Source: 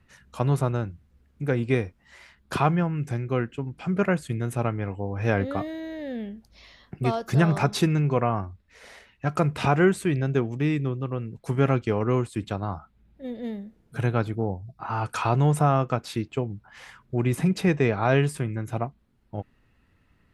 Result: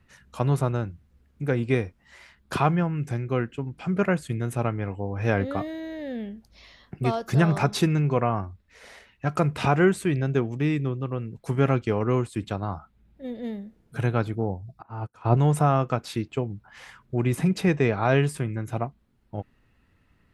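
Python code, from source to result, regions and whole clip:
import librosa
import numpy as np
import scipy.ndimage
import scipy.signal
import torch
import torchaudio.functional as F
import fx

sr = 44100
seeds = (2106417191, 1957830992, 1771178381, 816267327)

y = fx.chain(x, sr, fx.tilt_shelf(db=7.5, hz=1100.0),
    fx.upward_expand(threshold_db=-36.0, expansion=2.5), at=(14.82, 15.37))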